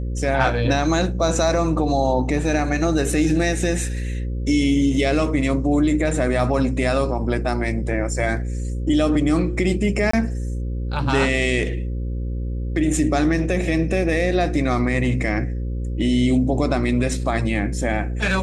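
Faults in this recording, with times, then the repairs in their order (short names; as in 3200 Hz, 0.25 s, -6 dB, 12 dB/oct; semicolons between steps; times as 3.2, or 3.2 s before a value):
buzz 60 Hz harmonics 9 -25 dBFS
10.11–10.13 gap 24 ms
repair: de-hum 60 Hz, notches 9; interpolate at 10.11, 24 ms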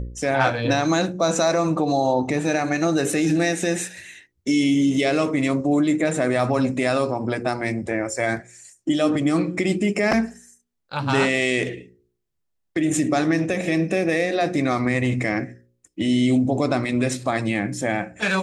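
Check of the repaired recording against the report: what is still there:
none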